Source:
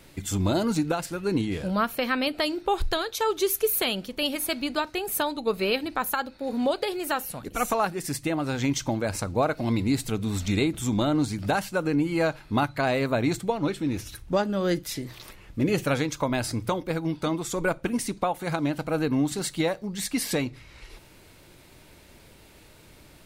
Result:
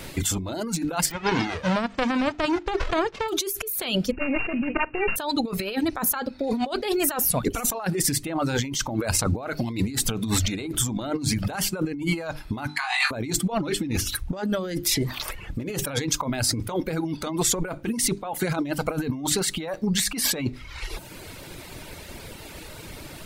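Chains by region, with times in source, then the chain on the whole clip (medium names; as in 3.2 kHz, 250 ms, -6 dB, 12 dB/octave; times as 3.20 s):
1.10–3.28 s: formants flattened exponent 0.1 + tape spacing loss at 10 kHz 42 dB
4.11–5.16 s: sorted samples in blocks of 16 samples + slow attack 106 ms + careless resampling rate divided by 8×, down none, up filtered
5.74–7.00 s: treble shelf 8.5 kHz -7 dB + de-hum 122.8 Hz, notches 3
12.67–13.11 s: brick-wall FIR band-pass 710–12000 Hz + flutter echo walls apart 3.5 m, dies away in 0.39 s
whole clip: hum notches 50/100/150/200/250/300/350/400 Hz; reverb removal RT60 0.78 s; compressor with a negative ratio -35 dBFS, ratio -1; trim +8.5 dB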